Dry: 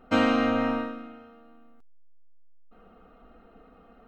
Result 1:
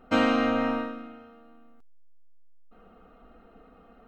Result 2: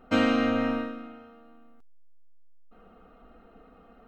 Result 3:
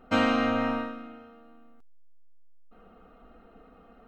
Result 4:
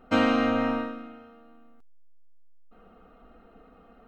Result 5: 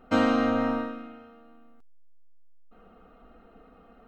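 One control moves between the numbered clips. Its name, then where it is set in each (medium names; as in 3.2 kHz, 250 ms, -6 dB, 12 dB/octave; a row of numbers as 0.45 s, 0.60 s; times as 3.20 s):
dynamic bell, frequency: 130 Hz, 920 Hz, 360 Hz, 8.1 kHz, 2.5 kHz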